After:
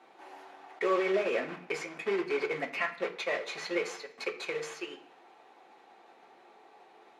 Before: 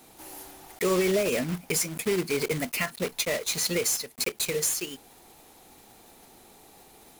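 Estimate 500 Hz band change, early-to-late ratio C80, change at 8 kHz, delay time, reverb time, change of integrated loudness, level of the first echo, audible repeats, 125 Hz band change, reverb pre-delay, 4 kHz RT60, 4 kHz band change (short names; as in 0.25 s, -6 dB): -3.5 dB, 16.0 dB, -22.0 dB, none, 0.55 s, -6.0 dB, none, none, -18.0 dB, 3 ms, 0.65 s, -10.5 dB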